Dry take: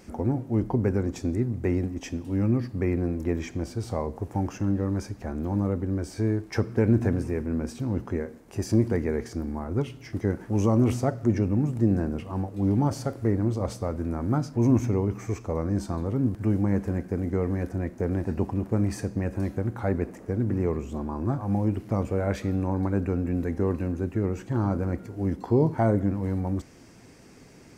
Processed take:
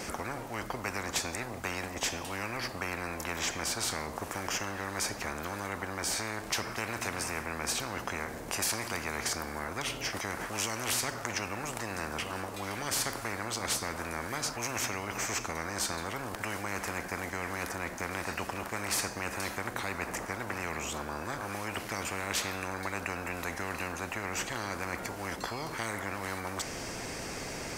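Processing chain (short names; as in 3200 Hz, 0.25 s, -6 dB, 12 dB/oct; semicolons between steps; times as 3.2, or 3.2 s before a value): spectral compressor 10:1; gain -2 dB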